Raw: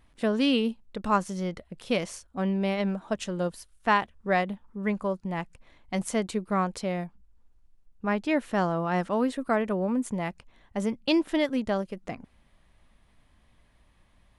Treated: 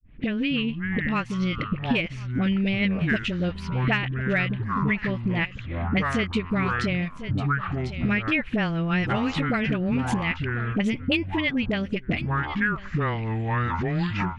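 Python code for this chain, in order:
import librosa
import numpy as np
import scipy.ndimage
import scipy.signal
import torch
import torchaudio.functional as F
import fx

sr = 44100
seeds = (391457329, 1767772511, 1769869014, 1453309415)

p1 = fx.fade_in_head(x, sr, length_s=2.13)
p2 = fx.env_lowpass(p1, sr, base_hz=1900.0, full_db=-25.5)
p3 = fx.curve_eq(p2, sr, hz=(210.0, 960.0, 2500.0, 9100.0), db=(0, -10, 13, -17))
p4 = fx.hpss(p3, sr, part='harmonic', gain_db=-9)
p5 = fx.low_shelf(p4, sr, hz=460.0, db=12.0)
p6 = fx.clip_asym(p5, sr, top_db=-15.5, bottom_db=-12.0)
p7 = p5 + (p6 * 10.0 ** (-9.0 / 20.0))
p8 = fx.dispersion(p7, sr, late='highs', ms=43.0, hz=570.0)
p9 = p8 + fx.echo_single(p8, sr, ms=1047, db=-23.0, dry=0)
p10 = fx.echo_pitch(p9, sr, ms=153, semitones=-7, count=2, db_per_echo=-6.0)
y = fx.band_squash(p10, sr, depth_pct=100)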